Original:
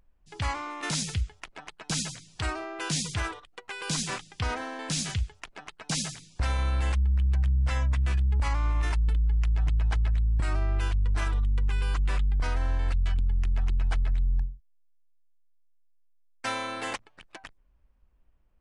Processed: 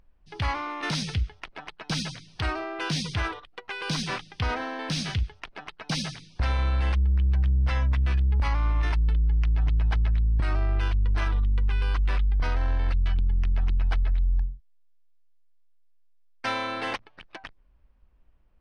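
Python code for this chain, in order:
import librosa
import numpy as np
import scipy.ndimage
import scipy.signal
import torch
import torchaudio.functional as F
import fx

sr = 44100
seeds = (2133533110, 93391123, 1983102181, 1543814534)

p1 = scipy.signal.savgol_filter(x, 15, 4, mode='constant')
p2 = 10.0 ** (-29.0 / 20.0) * np.tanh(p1 / 10.0 ** (-29.0 / 20.0))
y = p1 + F.gain(torch.from_numpy(p2), -5.0).numpy()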